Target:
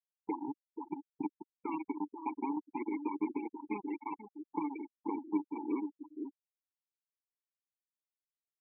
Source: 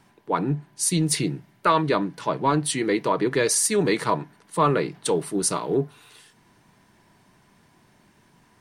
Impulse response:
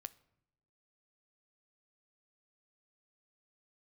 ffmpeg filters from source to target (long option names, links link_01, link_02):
-filter_complex "[0:a]alimiter=limit=-15.5dB:level=0:latency=1:release=51,firequalizer=gain_entry='entry(1800,0);entry(4200,-17);entry(12000,5)':delay=0.05:min_phase=1,acompressor=threshold=-37dB:ratio=8,highpass=140,lowshelf=frequency=230:gain=-5,acrusher=bits=5:mix=0:aa=0.000001,asplit=2[link_01][link_02];[link_02]aecho=0:1:51|486:0.141|0.501[link_03];[link_01][link_03]amix=inputs=2:normalize=0,aeval=exprs='sgn(val(0))*max(abs(val(0))-0.002,0)':channel_layout=same,asplit=3[link_04][link_05][link_06];[link_04]bandpass=frequency=300:width_type=q:width=8,volume=0dB[link_07];[link_05]bandpass=frequency=870:width_type=q:width=8,volume=-6dB[link_08];[link_06]bandpass=frequency=2240:width_type=q:width=8,volume=-9dB[link_09];[link_07][link_08][link_09]amix=inputs=3:normalize=0,afftfilt=real='re*gte(hypot(re,im),0.00447)':imag='im*gte(hypot(re,im),0.00447)':win_size=1024:overlap=0.75,volume=15.5dB"